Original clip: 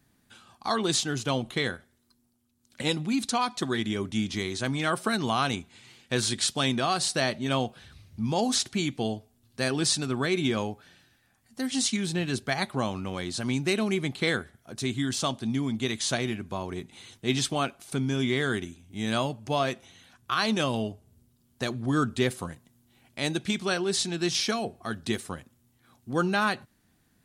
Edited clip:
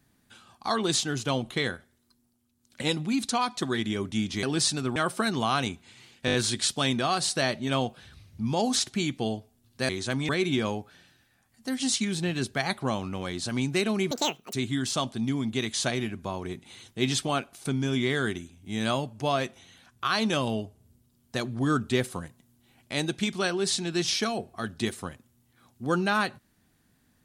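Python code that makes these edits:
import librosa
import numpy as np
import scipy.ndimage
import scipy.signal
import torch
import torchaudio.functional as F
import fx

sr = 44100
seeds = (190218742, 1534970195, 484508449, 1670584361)

y = fx.edit(x, sr, fx.swap(start_s=4.43, length_s=0.4, other_s=9.68, other_length_s=0.53),
    fx.stutter(start_s=6.13, slice_s=0.02, count=5),
    fx.speed_span(start_s=14.03, length_s=0.77, speed=1.82), tone=tone)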